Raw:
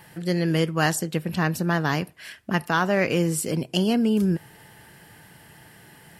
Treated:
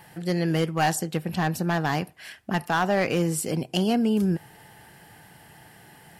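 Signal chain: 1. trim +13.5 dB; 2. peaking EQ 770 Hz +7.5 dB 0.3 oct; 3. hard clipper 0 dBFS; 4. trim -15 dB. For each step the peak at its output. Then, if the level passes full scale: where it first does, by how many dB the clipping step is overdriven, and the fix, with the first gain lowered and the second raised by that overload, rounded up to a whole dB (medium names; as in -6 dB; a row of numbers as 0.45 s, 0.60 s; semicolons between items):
+7.0 dBFS, +8.5 dBFS, 0.0 dBFS, -15.0 dBFS; step 1, 8.5 dB; step 1 +4.5 dB, step 4 -6 dB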